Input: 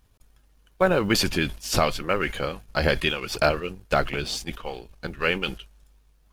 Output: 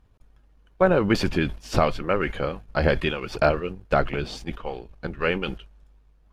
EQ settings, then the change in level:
low-pass filter 1,400 Hz 6 dB per octave
+2.5 dB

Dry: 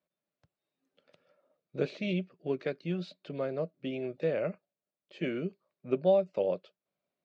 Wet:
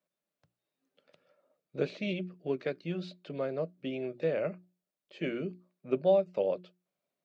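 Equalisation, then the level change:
parametric band 64 Hz −9 dB 0.83 octaves
mains-hum notches 60/120/180/240/300/360 Hz
0.0 dB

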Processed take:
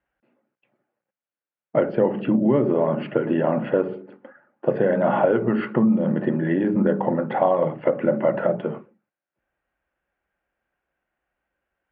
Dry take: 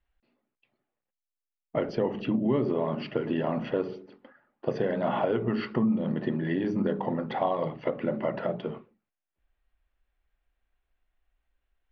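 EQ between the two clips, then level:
loudspeaker in its box 110–2,800 Hz, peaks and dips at 140 Hz +5 dB, 200 Hz +5 dB, 330 Hz +5 dB, 550 Hz +8 dB, 840 Hz +4 dB, 1,500 Hz +7 dB
+3.0 dB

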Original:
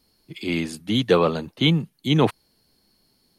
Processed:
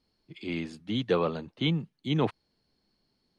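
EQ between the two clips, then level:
high-frequency loss of the air 98 metres
−8.0 dB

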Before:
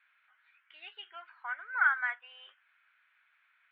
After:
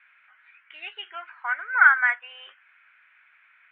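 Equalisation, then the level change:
low-pass with resonance 2,400 Hz, resonance Q 1.9
low-shelf EQ 440 Hz +7 dB
+7.0 dB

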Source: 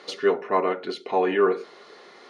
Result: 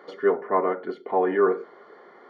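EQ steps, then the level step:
Savitzky-Golay smoothing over 41 samples
high-pass filter 140 Hz 12 dB per octave
0.0 dB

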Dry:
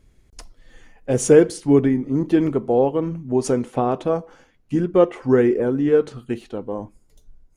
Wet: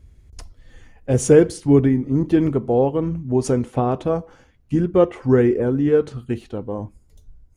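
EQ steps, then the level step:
parametric band 71 Hz +14.5 dB 1.6 octaves
−1.0 dB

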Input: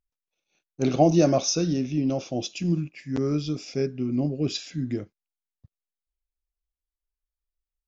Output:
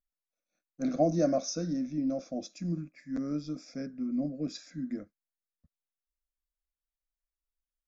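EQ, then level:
high-shelf EQ 5,000 Hz −6 dB
phaser with its sweep stopped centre 590 Hz, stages 8
dynamic equaliser 1,200 Hz, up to −4 dB, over −47 dBFS, Q 2.4
−4.5 dB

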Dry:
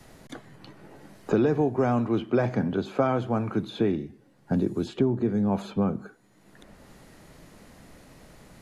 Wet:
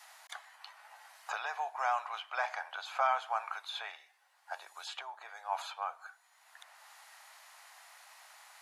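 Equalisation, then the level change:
Butterworth high-pass 750 Hz 48 dB per octave
+1.0 dB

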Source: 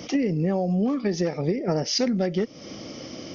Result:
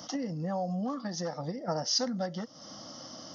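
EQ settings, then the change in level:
high-pass filter 380 Hz 6 dB per octave
phaser with its sweep stopped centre 990 Hz, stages 4
dynamic equaliser 480 Hz, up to +6 dB, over −54 dBFS, Q 6.6
0.0 dB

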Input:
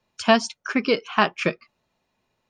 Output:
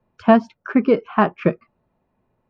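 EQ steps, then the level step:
low-pass filter 1,400 Hz 12 dB per octave
low-shelf EQ 440 Hz +7 dB
+2.0 dB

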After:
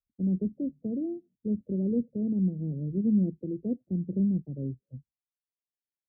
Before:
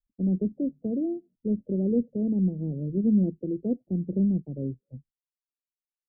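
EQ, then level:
high-pass filter 74 Hz
Bessel low-pass filter 670 Hz
low-shelf EQ 110 Hz +11 dB
−4.5 dB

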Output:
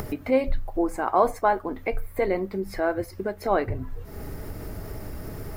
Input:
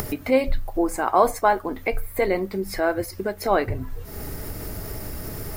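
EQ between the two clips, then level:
high-shelf EQ 3,000 Hz −9.5 dB
−2.0 dB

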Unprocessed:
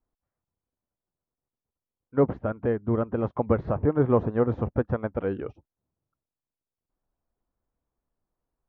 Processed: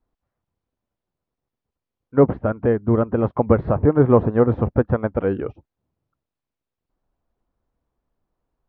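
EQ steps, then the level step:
high-frequency loss of the air 180 metres
+7.5 dB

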